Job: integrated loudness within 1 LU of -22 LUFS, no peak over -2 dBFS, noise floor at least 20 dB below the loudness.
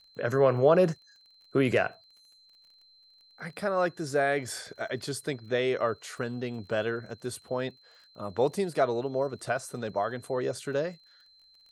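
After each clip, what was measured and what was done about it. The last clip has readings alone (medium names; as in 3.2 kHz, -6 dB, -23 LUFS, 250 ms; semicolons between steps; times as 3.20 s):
tick rate 27 per s; steady tone 4.1 kHz; tone level -57 dBFS; loudness -29.5 LUFS; peak level -9.5 dBFS; loudness target -22.0 LUFS
-> de-click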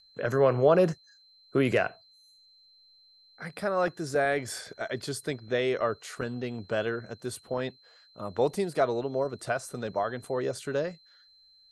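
tick rate 0.17 per s; steady tone 4.1 kHz; tone level -57 dBFS
-> band-stop 4.1 kHz, Q 30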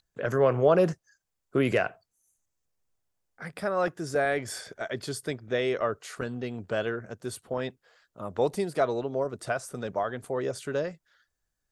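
steady tone not found; loudness -29.5 LUFS; peak level -10.0 dBFS; loudness target -22.0 LUFS
-> trim +7.5 dB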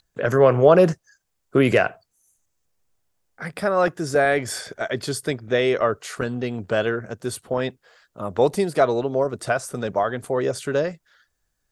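loudness -22.0 LUFS; peak level -2.5 dBFS; noise floor -75 dBFS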